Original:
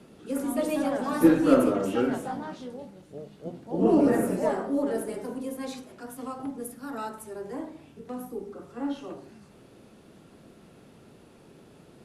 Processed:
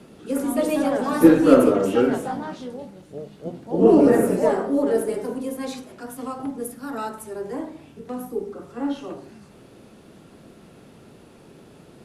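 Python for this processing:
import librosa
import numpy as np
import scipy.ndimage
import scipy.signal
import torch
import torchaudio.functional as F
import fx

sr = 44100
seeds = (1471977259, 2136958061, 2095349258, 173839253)

y = fx.dynamic_eq(x, sr, hz=440.0, q=4.8, threshold_db=-41.0, ratio=4.0, max_db=6)
y = y * librosa.db_to_amplitude(5.0)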